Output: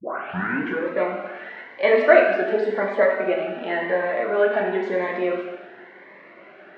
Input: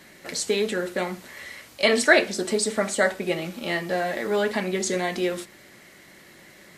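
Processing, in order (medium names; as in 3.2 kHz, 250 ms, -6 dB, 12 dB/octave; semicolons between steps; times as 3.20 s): tape start-up on the opening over 0.86 s; in parallel at -3 dB: compression, threshold -31 dBFS, peak gain reduction 19 dB; on the sum: cabinet simulation 320–2500 Hz, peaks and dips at 430 Hz +5 dB, 680 Hz +9 dB, 1 kHz +6 dB, 1.5 kHz +6 dB; plate-style reverb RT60 1.2 s, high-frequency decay 1×, DRR 0.5 dB; Shepard-style phaser rising 0.95 Hz; trim -2 dB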